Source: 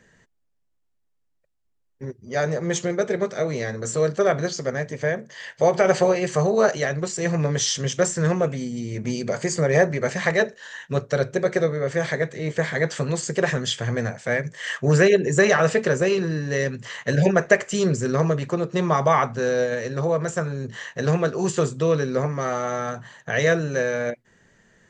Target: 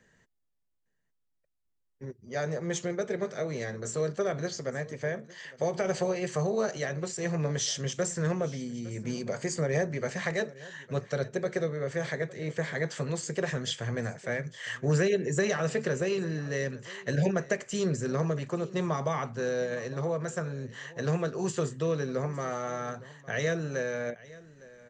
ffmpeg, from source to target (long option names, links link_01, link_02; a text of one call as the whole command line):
ffmpeg -i in.wav -filter_complex "[0:a]acrossover=split=390|3000[link_01][link_02][link_03];[link_02]acompressor=threshold=-22dB:ratio=6[link_04];[link_01][link_04][link_03]amix=inputs=3:normalize=0,aecho=1:1:858:0.1,volume=-7.5dB" out.wav